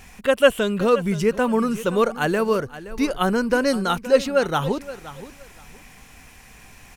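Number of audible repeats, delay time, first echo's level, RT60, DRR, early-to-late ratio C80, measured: 2, 522 ms, -15.5 dB, no reverb, no reverb, no reverb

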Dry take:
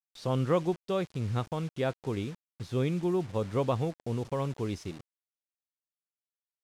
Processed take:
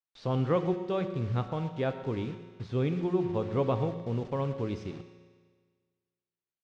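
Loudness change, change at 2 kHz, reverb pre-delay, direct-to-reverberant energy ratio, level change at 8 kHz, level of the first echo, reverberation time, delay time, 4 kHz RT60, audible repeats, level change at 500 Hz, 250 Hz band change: +0.5 dB, -1.0 dB, 5 ms, 7.5 dB, under -10 dB, -18.0 dB, 1.6 s, 121 ms, 1.5 s, 1, +0.5 dB, +0.5 dB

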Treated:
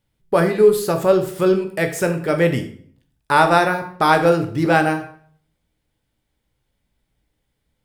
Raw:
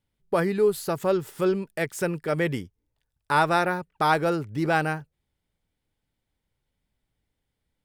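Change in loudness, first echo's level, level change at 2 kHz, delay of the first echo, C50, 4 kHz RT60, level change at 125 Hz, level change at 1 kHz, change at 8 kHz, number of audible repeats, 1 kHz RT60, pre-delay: +7.5 dB, no echo, +7.0 dB, no echo, 10.5 dB, 0.45 s, +7.0 dB, +7.0 dB, +7.0 dB, no echo, 0.50 s, 10 ms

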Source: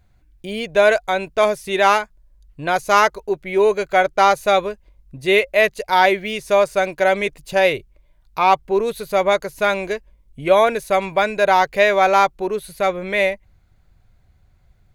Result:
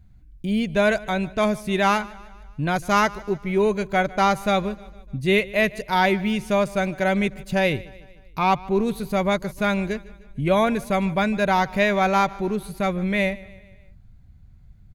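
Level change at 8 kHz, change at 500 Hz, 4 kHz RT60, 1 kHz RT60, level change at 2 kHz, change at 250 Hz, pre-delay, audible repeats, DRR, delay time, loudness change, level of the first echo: -4.5 dB, -6.0 dB, no reverb, no reverb, -4.5 dB, +5.5 dB, no reverb, 3, no reverb, 151 ms, -4.5 dB, -21.0 dB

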